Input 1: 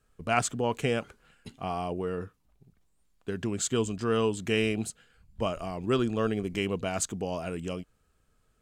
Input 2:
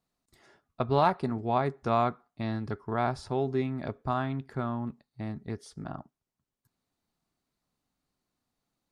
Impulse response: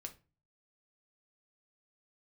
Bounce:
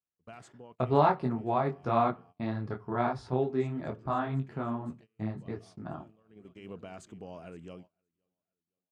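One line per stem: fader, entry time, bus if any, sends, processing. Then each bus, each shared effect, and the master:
-12.0 dB, 0.00 s, send -12.5 dB, echo send -17.5 dB, limiter -22.5 dBFS, peak gain reduction 11.5 dB; auto duck -22 dB, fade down 1.85 s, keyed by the second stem
+0.5 dB, 0.00 s, send -3.5 dB, no echo send, detuned doubles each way 33 cents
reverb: on, RT60 0.35 s, pre-delay 3 ms
echo: feedback echo 0.518 s, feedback 40%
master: HPF 73 Hz 12 dB/oct; gate -51 dBFS, range -21 dB; LPF 2400 Hz 6 dB/oct

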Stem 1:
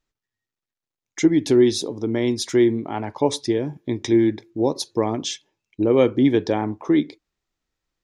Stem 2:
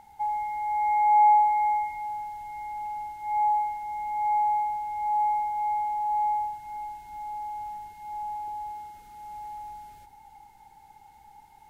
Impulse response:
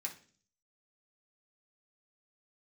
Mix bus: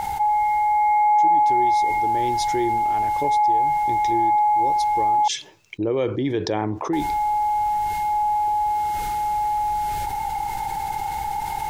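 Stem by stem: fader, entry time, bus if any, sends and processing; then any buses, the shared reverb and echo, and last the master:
-18.0 dB, 0.00 s, no send, dry
+1.0 dB, 0.00 s, muted 5.28–6.93, no send, dry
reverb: off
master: bell 240 Hz -9.5 dB 0.39 oct; fast leveller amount 70%

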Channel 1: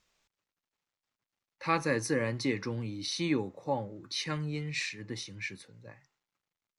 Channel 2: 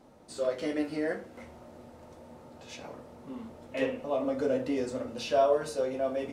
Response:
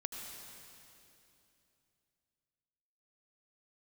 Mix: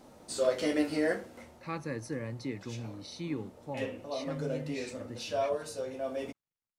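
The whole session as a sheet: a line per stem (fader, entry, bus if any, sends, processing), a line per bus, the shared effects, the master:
-11.5 dB, 0.00 s, no send, low shelf 390 Hz +8.5 dB
+2.0 dB, 0.00 s, no send, high shelf 3700 Hz +7.5 dB; auto duck -9 dB, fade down 0.50 s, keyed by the first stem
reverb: off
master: dry

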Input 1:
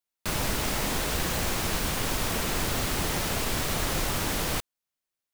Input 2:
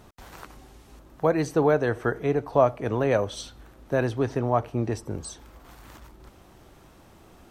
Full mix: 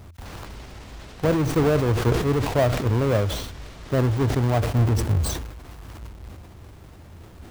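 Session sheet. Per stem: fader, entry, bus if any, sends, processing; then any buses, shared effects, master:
-1.0 dB, 0.00 s, no send, limiter -26 dBFS, peak gain reduction 10.5 dB; LPF 5700 Hz 12 dB/oct; auto duck -8 dB, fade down 0.45 s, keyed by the second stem
-2.0 dB, 0.00 s, no send, half-waves squared off; de-esser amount 70%; bell 85 Hz +12 dB 0.93 oct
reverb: off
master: sustainer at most 54 dB/s

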